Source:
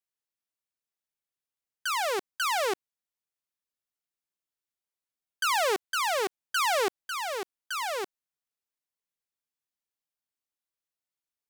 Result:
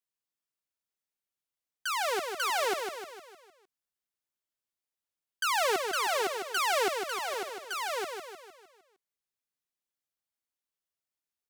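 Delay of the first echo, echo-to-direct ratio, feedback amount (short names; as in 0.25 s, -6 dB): 0.153 s, -4.5 dB, 51%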